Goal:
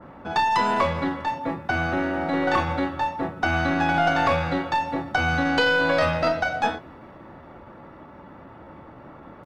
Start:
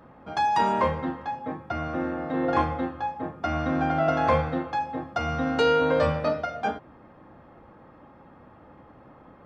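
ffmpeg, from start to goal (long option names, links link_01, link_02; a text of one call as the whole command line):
ffmpeg -i in.wav -filter_complex "[0:a]acrossover=split=820|3900[link_01][link_02][link_03];[link_01]acompressor=threshold=-29dB:ratio=4[link_04];[link_02]acompressor=threshold=-28dB:ratio=4[link_05];[link_03]acompressor=threshold=-55dB:ratio=4[link_06];[link_04][link_05][link_06]amix=inputs=3:normalize=0,asplit=2[link_07][link_08];[link_08]adelay=27,volume=-12.5dB[link_09];[link_07][link_09]amix=inputs=2:normalize=0,asetrate=46722,aresample=44100,atempo=0.943874,asplit=2[link_10][link_11];[link_11]aeval=exprs='clip(val(0),-1,0.015)':channel_layout=same,volume=-10dB[link_12];[link_10][link_12]amix=inputs=2:normalize=0,adynamicequalizer=threshold=0.00891:dfrequency=2400:dqfactor=0.7:tfrequency=2400:tqfactor=0.7:attack=5:release=100:ratio=0.375:range=3:mode=boostabove:tftype=highshelf,volume=4dB" out.wav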